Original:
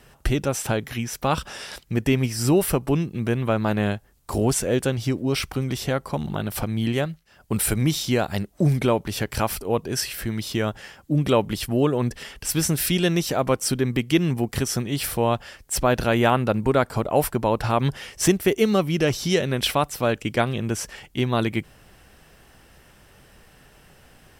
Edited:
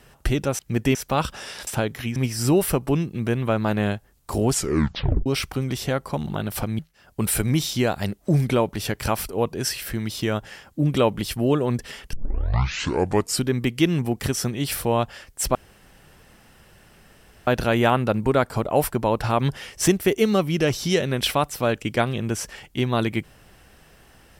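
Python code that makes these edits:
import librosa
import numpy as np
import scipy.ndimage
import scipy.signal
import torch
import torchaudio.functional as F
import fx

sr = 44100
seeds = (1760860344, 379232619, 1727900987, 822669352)

y = fx.edit(x, sr, fx.swap(start_s=0.59, length_s=0.49, other_s=1.8, other_length_s=0.36),
    fx.tape_stop(start_s=4.52, length_s=0.74),
    fx.cut(start_s=6.79, length_s=0.32),
    fx.tape_start(start_s=12.45, length_s=1.3),
    fx.insert_room_tone(at_s=15.87, length_s=1.92), tone=tone)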